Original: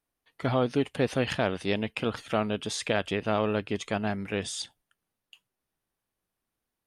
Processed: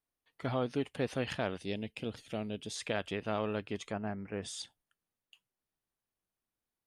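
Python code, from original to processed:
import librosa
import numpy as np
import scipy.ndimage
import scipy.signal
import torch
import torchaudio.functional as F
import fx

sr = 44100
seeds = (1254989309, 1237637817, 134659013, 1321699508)

y = fx.peak_eq(x, sr, hz=1200.0, db=-13.0, octaves=1.3, at=(1.58, 2.76))
y = fx.moving_average(y, sr, points=12, at=(3.91, 4.42), fade=0.02)
y = y * librosa.db_to_amplitude(-7.5)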